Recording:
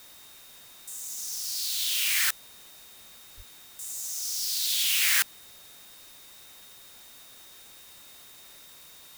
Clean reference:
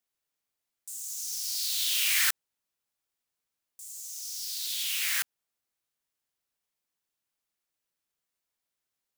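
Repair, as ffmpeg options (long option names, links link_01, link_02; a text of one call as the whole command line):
ffmpeg -i in.wav -filter_complex "[0:a]bandreject=frequency=3700:width=30,asplit=3[link_01][link_02][link_03];[link_01]afade=type=out:start_time=3.36:duration=0.02[link_04];[link_02]highpass=frequency=140:width=0.5412,highpass=frequency=140:width=1.3066,afade=type=in:start_time=3.36:duration=0.02,afade=type=out:start_time=3.48:duration=0.02[link_05];[link_03]afade=type=in:start_time=3.48:duration=0.02[link_06];[link_04][link_05][link_06]amix=inputs=3:normalize=0,afwtdn=0.0028,asetnsamples=nb_out_samples=441:pad=0,asendcmd='2.47 volume volume -6dB',volume=0dB" out.wav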